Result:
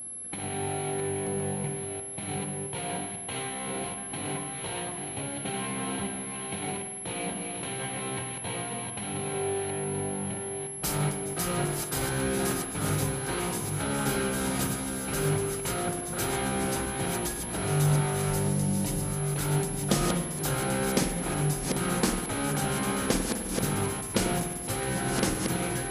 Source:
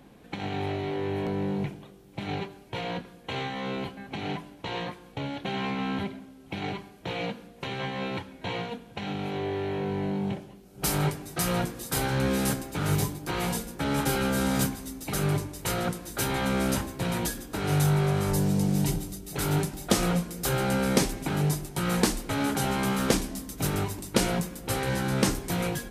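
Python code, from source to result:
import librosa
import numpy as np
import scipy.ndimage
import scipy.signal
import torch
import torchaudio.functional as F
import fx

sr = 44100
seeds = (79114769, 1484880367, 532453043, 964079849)

y = fx.reverse_delay(x, sr, ms=667, wet_db=-5)
y = fx.rev_spring(y, sr, rt60_s=1.4, pass_ms=(48,), chirp_ms=60, drr_db=5.0)
y = y + 10.0 ** (-33.0 / 20.0) * np.sin(2.0 * np.pi * 11000.0 * np.arange(len(y)) / sr)
y = F.gain(torch.from_numpy(y), -3.5).numpy()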